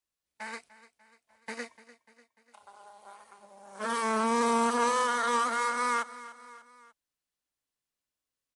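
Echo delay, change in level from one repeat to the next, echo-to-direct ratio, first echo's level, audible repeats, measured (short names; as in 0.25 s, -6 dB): 0.296 s, -5.5 dB, -15.5 dB, -17.0 dB, 3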